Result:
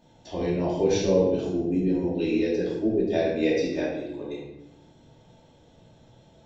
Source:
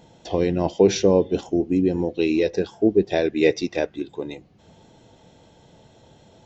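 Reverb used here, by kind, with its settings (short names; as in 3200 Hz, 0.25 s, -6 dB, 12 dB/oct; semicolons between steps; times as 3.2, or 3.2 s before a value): shoebox room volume 340 m³, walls mixed, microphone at 2.6 m; gain -12 dB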